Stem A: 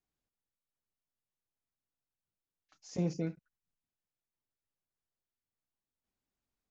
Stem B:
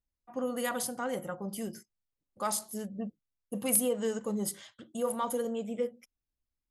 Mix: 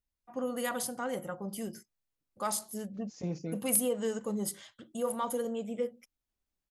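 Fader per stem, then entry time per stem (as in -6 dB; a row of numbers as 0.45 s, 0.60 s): -3.0 dB, -1.0 dB; 0.25 s, 0.00 s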